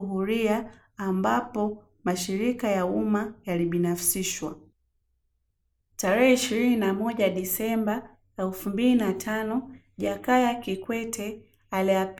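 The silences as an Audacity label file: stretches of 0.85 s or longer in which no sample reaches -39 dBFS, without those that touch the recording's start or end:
4.540000	5.990000	silence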